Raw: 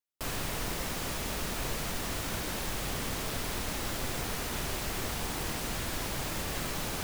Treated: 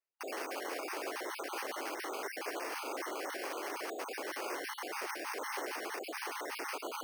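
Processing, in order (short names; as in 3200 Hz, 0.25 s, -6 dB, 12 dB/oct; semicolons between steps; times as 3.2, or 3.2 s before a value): random spectral dropouts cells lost 34%; limiter -28 dBFS, peak gain reduction 6 dB; mistuned SSB +120 Hz 210–2800 Hz; careless resampling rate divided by 6×, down none, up hold; gain +2.5 dB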